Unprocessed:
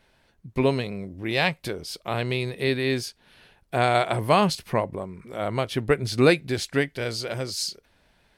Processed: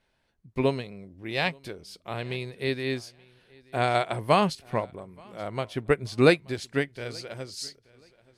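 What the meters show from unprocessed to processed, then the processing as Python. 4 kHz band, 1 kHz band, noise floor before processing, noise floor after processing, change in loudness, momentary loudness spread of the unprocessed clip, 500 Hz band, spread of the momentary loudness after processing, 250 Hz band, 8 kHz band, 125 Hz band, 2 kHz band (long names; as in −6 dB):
−5.0 dB, −3.0 dB, −64 dBFS, −72 dBFS, −3.0 dB, 13 LU, −2.5 dB, 19 LU, −3.0 dB, −8.0 dB, −4.0 dB, −3.0 dB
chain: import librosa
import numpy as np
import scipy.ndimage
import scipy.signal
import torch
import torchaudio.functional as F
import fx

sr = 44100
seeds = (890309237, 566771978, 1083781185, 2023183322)

y = scipy.signal.sosfilt(scipy.signal.butter(2, 12000.0, 'lowpass', fs=sr, output='sos'), x)
y = fx.echo_feedback(y, sr, ms=878, feedback_pct=29, wet_db=-21)
y = fx.upward_expand(y, sr, threshold_db=-33.0, expansion=1.5)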